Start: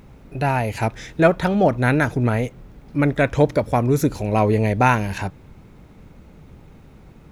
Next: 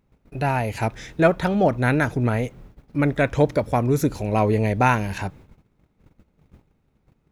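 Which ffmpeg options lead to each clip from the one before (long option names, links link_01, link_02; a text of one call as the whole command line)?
ffmpeg -i in.wav -af "agate=range=-19dB:threshold=-41dB:ratio=16:detection=peak,volume=-2dB" out.wav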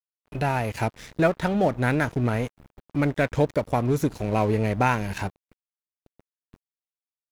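ffmpeg -i in.wav -af "acompressor=threshold=-43dB:ratio=1.5,aeval=exprs='sgn(val(0))*max(abs(val(0))-0.00596,0)':channel_layout=same,volume=7.5dB" out.wav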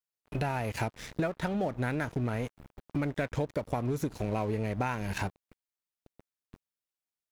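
ffmpeg -i in.wav -af "acompressor=threshold=-28dB:ratio=6" out.wav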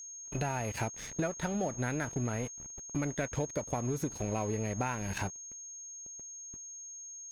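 ffmpeg -i in.wav -af "aeval=exprs='val(0)+0.00891*sin(2*PI*6500*n/s)':channel_layout=same,volume=-2.5dB" out.wav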